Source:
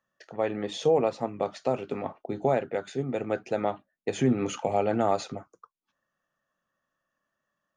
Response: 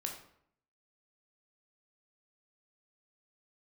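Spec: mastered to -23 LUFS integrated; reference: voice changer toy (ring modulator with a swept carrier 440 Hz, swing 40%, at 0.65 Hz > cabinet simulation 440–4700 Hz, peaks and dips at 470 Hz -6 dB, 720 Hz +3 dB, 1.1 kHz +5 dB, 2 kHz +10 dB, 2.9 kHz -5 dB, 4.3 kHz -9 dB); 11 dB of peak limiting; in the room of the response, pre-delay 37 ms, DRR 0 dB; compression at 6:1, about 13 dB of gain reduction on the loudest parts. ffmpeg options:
-filter_complex "[0:a]acompressor=threshold=0.0224:ratio=6,alimiter=level_in=2.11:limit=0.0631:level=0:latency=1,volume=0.473,asplit=2[s0][s1];[1:a]atrim=start_sample=2205,adelay=37[s2];[s1][s2]afir=irnorm=-1:irlink=0,volume=1[s3];[s0][s3]amix=inputs=2:normalize=0,aeval=exprs='val(0)*sin(2*PI*440*n/s+440*0.4/0.65*sin(2*PI*0.65*n/s))':c=same,highpass=440,equalizer=f=470:t=q:w=4:g=-6,equalizer=f=720:t=q:w=4:g=3,equalizer=f=1100:t=q:w=4:g=5,equalizer=f=2000:t=q:w=4:g=10,equalizer=f=2900:t=q:w=4:g=-5,equalizer=f=4300:t=q:w=4:g=-9,lowpass=f=4700:w=0.5412,lowpass=f=4700:w=1.3066,volume=8.91"

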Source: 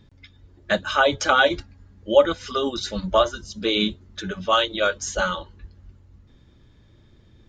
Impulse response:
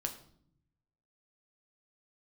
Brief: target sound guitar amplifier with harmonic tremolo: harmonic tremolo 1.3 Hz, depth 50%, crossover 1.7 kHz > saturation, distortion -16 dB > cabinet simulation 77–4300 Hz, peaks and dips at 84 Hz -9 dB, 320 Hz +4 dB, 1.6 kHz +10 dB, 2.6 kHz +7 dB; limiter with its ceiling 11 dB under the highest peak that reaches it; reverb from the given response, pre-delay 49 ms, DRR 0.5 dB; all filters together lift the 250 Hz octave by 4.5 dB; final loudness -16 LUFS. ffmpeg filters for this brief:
-filter_complex "[0:a]equalizer=f=250:t=o:g=3.5,alimiter=limit=0.188:level=0:latency=1,asplit=2[s0][s1];[1:a]atrim=start_sample=2205,adelay=49[s2];[s1][s2]afir=irnorm=-1:irlink=0,volume=0.891[s3];[s0][s3]amix=inputs=2:normalize=0,acrossover=split=1700[s4][s5];[s4]aeval=exprs='val(0)*(1-0.5/2+0.5/2*cos(2*PI*1.3*n/s))':c=same[s6];[s5]aeval=exprs='val(0)*(1-0.5/2-0.5/2*cos(2*PI*1.3*n/s))':c=same[s7];[s6][s7]amix=inputs=2:normalize=0,asoftclip=threshold=0.126,highpass=77,equalizer=f=84:t=q:w=4:g=-9,equalizer=f=320:t=q:w=4:g=4,equalizer=f=1600:t=q:w=4:g=10,equalizer=f=2600:t=q:w=4:g=7,lowpass=f=4300:w=0.5412,lowpass=f=4300:w=1.3066,volume=2.82"

